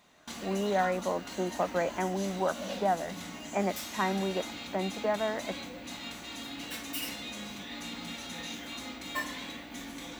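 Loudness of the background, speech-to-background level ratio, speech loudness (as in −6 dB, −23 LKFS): −39.5 LKFS, 7.0 dB, −32.5 LKFS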